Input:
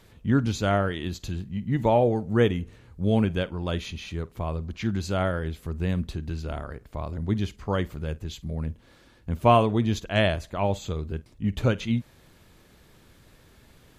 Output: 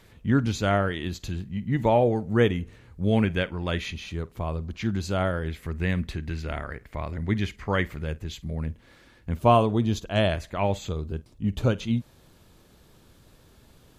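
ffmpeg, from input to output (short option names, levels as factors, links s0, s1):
-af "asetnsamples=n=441:p=0,asendcmd='3.13 equalizer g 9.5;3.94 equalizer g 0.5;5.48 equalizer g 12;8.02 equalizer g 5;9.39 equalizer g -6;10.32 equalizer g 5.5;10.89 equalizer g -6',equalizer=f=2000:t=o:w=0.74:g=3"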